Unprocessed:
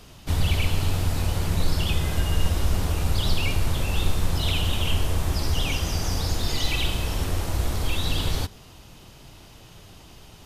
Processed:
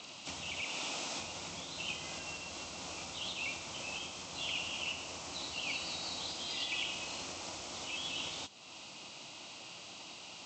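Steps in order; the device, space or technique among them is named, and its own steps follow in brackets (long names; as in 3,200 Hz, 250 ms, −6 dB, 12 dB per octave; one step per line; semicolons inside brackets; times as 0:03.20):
0:00.61–0:01.19: high-pass filter 220 Hz 12 dB per octave
high-shelf EQ 5,900 Hz +10 dB
hearing aid with frequency lowering (hearing-aid frequency compression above 2,500 Hz 1.5 to 1; downward compressor 2 to 1, threshold −41 dBFS, peak gain reduction 14.5 dB; loudspeaker in its box 320–6,700 Hz, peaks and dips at 420 Hz −9 dB, 1,700 Hz −9 dB, 2,600 Hz +5 dB)
level +1 dB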